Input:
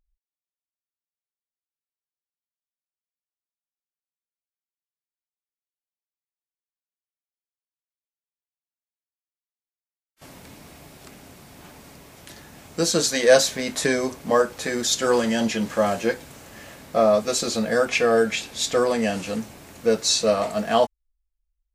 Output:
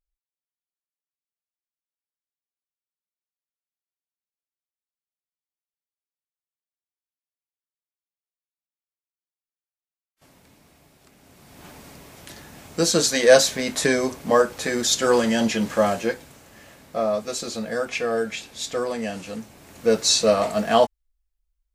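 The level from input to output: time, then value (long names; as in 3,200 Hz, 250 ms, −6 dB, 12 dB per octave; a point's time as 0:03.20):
0:11.12 −10.5 dB
0:11.68 +1.5 dB
0:15.83 +1.5 dB
0:16.42 −5.5 dB
0:19.50 −5.5 dB
0:19.96 +2 dB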